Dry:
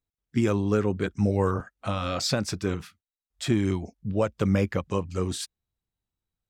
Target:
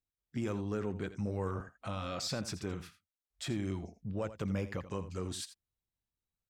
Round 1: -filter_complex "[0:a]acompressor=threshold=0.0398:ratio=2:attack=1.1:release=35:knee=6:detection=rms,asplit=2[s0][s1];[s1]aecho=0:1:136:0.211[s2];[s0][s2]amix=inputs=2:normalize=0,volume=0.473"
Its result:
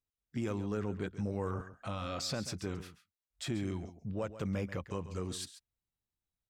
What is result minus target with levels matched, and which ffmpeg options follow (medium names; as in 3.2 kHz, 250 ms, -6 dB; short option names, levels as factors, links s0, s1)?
echo 53 ms late
-filter_complex "[0:a]acompressor=threshold=0.0398:ratio=2:attack=1.1:release=35:knee=6:detection=rms,asplit=2[s0][s1];[s1]aecho=0:1:83:0.211[s2];[s0][s2]amix=inputs=2:normalize=0,volume=0.473"